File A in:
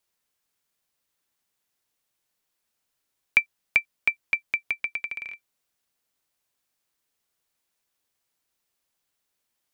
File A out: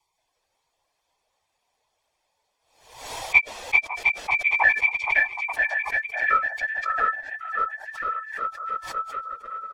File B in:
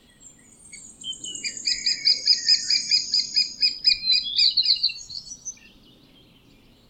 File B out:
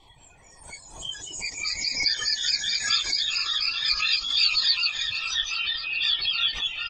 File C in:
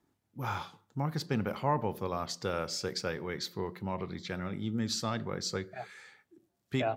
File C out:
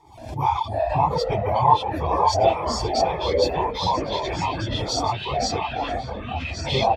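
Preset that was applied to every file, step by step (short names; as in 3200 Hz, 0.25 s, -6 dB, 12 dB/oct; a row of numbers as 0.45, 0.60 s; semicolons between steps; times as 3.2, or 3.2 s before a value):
phase scrambler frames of 50 ms; reverb removal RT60 1 s; bell 920 Hz +14 dB 1.3 oct; comb 0.9 ms, depth 75%; in parallel at -1 dB: compressor, threshold -27 dBFS; on the sum: air absorption 58 m; fixed phaser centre 570 Hz, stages 4; echoes that change speed 0.175 s, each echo -5 st, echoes 2; delay with a stepping band-pass 0.55 s, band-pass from 900 Hz, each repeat 1.4 oct, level -3.5 dB; backwards sustainer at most 83 dB/s; match loudness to -23 LUFS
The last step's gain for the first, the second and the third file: +1.0, -5.5, +3.0 dB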